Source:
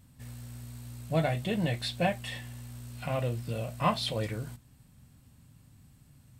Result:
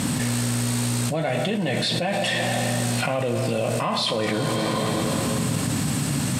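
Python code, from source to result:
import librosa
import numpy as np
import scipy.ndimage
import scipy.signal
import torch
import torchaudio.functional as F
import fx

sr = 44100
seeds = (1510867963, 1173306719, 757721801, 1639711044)

y = scipy.signal.sosfilt(scipy.signal.cheby1(2, 1.0, [220.0, 8900.0], 'bandpass', fs=sr, output='sos'), x)
y = fx.rev_plate(y, sr, seeds[0], rt60_s=2.3, hf_ratio=0.85, predelay_ms=0, drr_db=9.5)
y = fx.env_flatten(y, sr, amount_pct=100)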